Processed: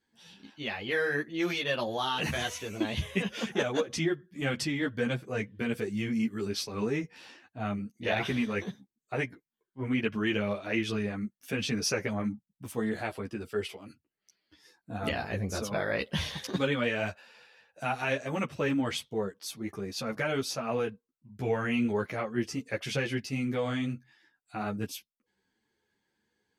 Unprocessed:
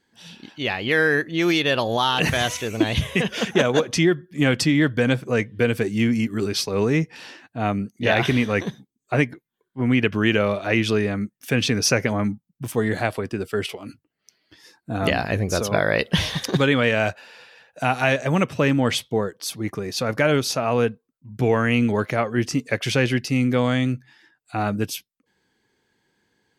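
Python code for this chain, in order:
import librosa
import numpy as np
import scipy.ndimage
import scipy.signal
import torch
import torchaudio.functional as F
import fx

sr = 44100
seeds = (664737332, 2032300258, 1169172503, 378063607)

y = fx.ensemble(x, sr)
y = y * 10.0 ** (-7.0 / 20.0)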